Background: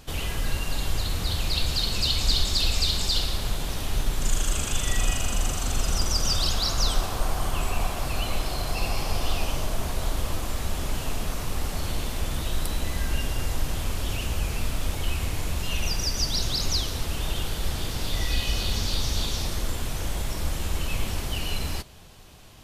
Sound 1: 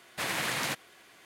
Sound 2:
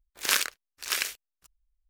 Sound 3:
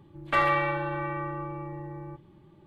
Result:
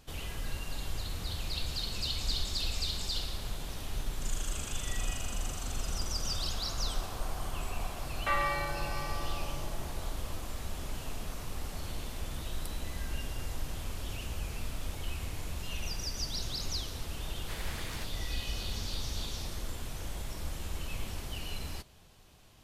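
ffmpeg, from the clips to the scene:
-filter_complex "[0:a]volume=-10dB[a];[3:a]equalizer=f=240:w=1.2:g=-14,atrim=end=2.66,asetpts=PTS-STARTPTS,volume=-6dB,afade=t=in:d=0.004:c=hsin,afade=t=out:st=2.656:d=0.004:c=hsin,adelay=350154S[b];[1:a]atrim=end=1.25,asetpts=PTS-STARTPTS,volume=-13dB,afade=t=in:d=0.004:c=hsin,afade=t=out:st=1.246:d=0.004:c=hsin,adelay=17300[c];[a][b][c]amix=inputs=3:normalize=0"

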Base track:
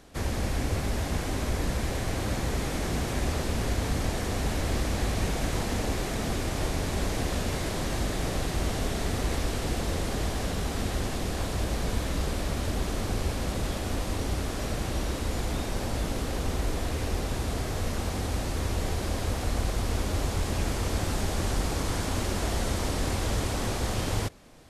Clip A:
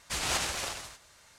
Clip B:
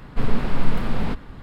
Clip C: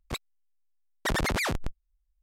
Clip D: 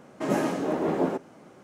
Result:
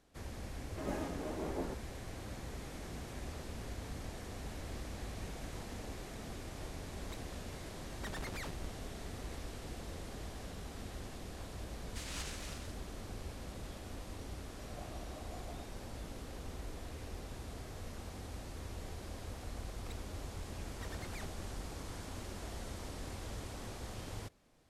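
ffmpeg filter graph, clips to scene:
-filter_complex "[4:a]asplit=2[a][b];[3:a]asplit=2[c][d];[0:a]volume=-16dB[e];[1:a]highpass=1.1k[f];[b]asplit=3[g][h][i];[g]bandpass=f=730:t=q:w=8,volume=0dB[j];[h]bandpass=f=1.09k:t=q:w=8,volume=-6dB[k];[i]bandpass=f=2.44k:t=q:w=8,volume=-9dB[l];[j][k][l]amix=inputs=3:normalize=0[m];[d]acompressor=threshold=-42dB:ratio=6:attack=3.2:release=140:knee=1:detection=peak[n];[a]atrim=end=1.63,asetpts=PTS-STARTPTS,volume=-14.5dB,afade=t=in:d=0.004:c=hsin,afade=t=out:st=1.626:d=0.004:c=hsin,adelay=570[o];[c]atrim=end=2.22,asetpts=PTS-STARTPTS,volume=-17dB,afade=t=in:d=0.004:c=hsin,afade=t=out:st=2.216:d=0.004:c=hsin,adelay=307818S[p];[f]atrim=end=1.38,asetpts=PTS-STARTPTS,volume=-14dB,afade=t=in:d=0.004:c=hsin,afade=t=out:st=1.376:d=0.004:c=hsin,adelay=11850[q];[m]atrim=end=1.63,asetpts=PTS-STARTPTS,volume=-15.5dB,afade=t=in:d=0.004:c=hsin,afade=t=out:st=1.626:d=0.004:c=hsin,adelay=14470[r];[n]atrim=end=2.22,asetpts=PTS-STARTPTS,volume=-7dB,afade=t=in:d=0.004:c=hsin,afade=t=out:st=2.216:d=0.004:c=hsin,adelay=19760[s];[e][o][p][q][r][s]amix=inputs=6:normalize=0"

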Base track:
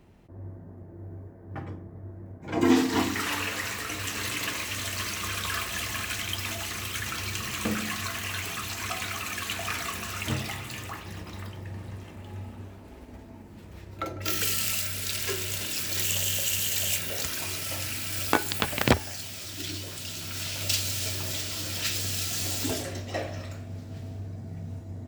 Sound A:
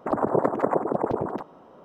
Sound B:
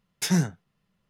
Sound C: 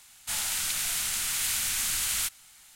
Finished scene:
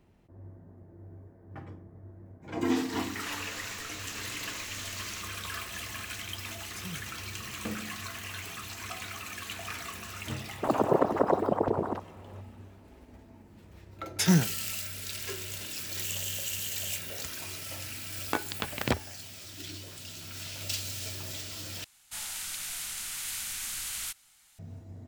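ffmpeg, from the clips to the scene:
-filter_complex "[3:a]asplit=2[a][b];[2:a]asplit=2[c][d];[0:a]volume=-7dB[e];[a]aresample=16000,aresample=44100[f];[c]alimiter=limit=-22dB:level=0:latency=1:release=268[g];[e]asplit=2[h][i];[h]atrim=end=21.844[j];[b]atrim=end=2.75,asetpts=PTS-STARTPTS,volume=-7.5dB[k];[i]atrim=start=24.586[l];[f]atrim=end=2.75,asetpts=PTS-STARTPTS,volume=-12.5dB,afade=t=in:d=0.004:c=hsin,afade=t=out:st=2.746:d=0.004:c=hsin,adelay=2940[m];[g]atrim=end=1.09,asetpts=PTS-STARTPTS,volume=-11.5dB,afade=t=in:d=0.004:c=hsin,afade=t=out:st=1.086:d=0.004:c=hsin,adelay=6540[n];[1:a]atrim=end=1.84,asetpts=PTS-STARTPTS,volume=-2dB,afade=t=in:d=0.004:c=hsin,afade=t=out:st=1.836:d=0.004:c=hsin,adelay=10570[o];[d]atrim=end=1.09,asetpts=PTS-STARTPTS,afade=t=in:d=0.004:c=hsin,afade=t=out:st=1.086:d=0.004:c=hsin,adelay=13970[p];[j][k]acrossfade=d=0.004:c1=hsin:c2=hsin[q];[q][l]acrossfade=d=0.004:c1=hsin:c2=hsin[r];[r][m][n][o][p]amix=inputs=5:normalize=0"

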